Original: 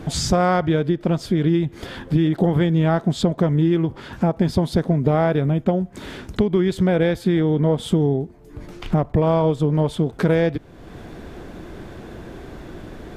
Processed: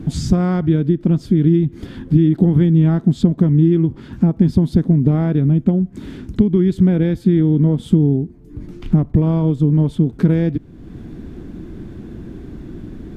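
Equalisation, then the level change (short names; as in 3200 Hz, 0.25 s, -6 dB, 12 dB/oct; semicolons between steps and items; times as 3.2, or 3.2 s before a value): resonant low shelf 400 Hz +11.5 dB, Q 1.5; -7.0 dB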